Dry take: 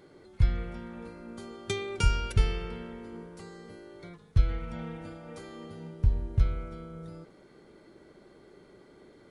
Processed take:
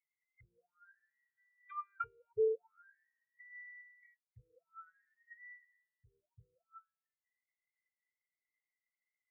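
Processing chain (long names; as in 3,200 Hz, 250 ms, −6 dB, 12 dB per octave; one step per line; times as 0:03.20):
high-frequency loss of the air 150 metres
envelope filter 440–2,200 Hz, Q 17, down, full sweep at −21 dBFS
graphic EQ with 10 bands 125 Hz +12 dB, 500 Hz −5 dB, 2,000 Hz +10 dB, 4,000 Hz +12 dB
every bin expanded away from the loudest bin 2.5 to 1
level +5 dB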